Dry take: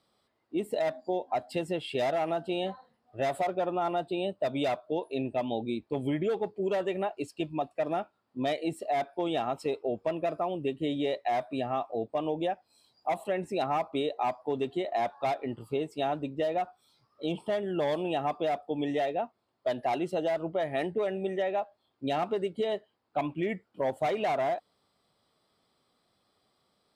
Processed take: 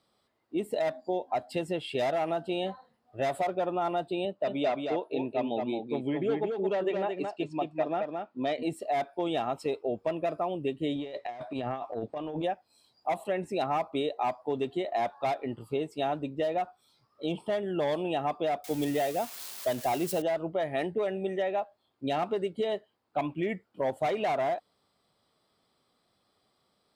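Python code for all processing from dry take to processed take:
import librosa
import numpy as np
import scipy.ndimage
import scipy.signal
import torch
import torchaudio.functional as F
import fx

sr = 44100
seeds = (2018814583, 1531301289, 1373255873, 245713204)

y = fx.chain(x, sr, fx.highpass(hz=160.0, slope=12),
    fx.air_absorb(metres=100.0),
    fx.echo_single(ms=220, db=-4.5), at=(4.25, 8.63))
y = fx.chain(y, sr, fx.lowpass(hz=7000.0, slope=12),
    fx.transient(attack_db=-12, sustain_db=4),
    fx.over_compress(threshold_db=-34.0, ratio=-0.5), at=(10.95, 12.44))
y = fx.chain(y, sr, fx.crossing_spikes(level_db=-29.0),
    fx.low_shelf(hz=110.0, db=9.5), at=(18.64, 20.22))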